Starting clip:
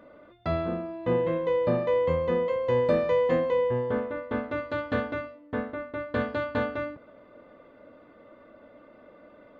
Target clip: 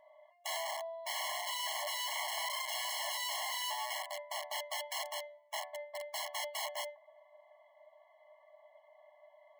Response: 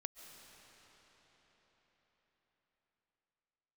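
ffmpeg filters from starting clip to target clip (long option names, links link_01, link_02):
-af "aeval=exprs='(mod(20*val(0)+1,2)-1)/20':channel_layout=same,bandreject=frequency=1800:width=11,afftfilt=real='re*eq(mod(floor(b*sr/1024/560),2),1)':imag='im*eq(mod(floor(b*sr/1024/560),2),1)':win_size=1024:overlap=0.75,volume=-3.5dB"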